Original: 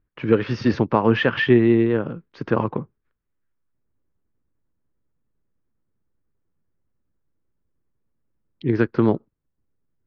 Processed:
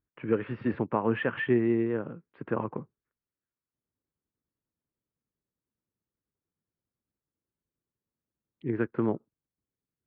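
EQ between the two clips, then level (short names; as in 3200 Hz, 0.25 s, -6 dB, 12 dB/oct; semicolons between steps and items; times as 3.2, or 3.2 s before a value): HPF 120 Hz 6 dB/oct; LPF 2700 Hz 24 dB/oct; air absorption 120 m; -8.5 dB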